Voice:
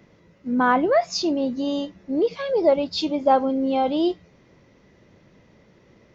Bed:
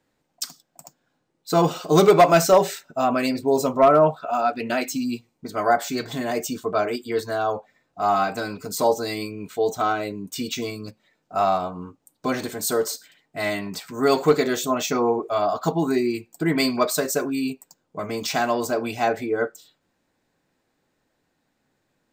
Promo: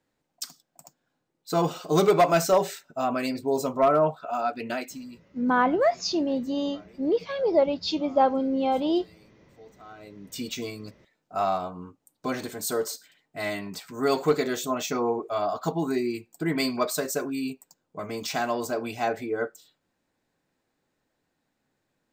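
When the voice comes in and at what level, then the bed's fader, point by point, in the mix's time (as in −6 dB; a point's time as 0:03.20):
4.90 s, −3.0 dB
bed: 0:04.71 −5.5 dB
0:05.50 −28.5 dB
0:09.78 −28.5 dB
0:10.35 −5 dB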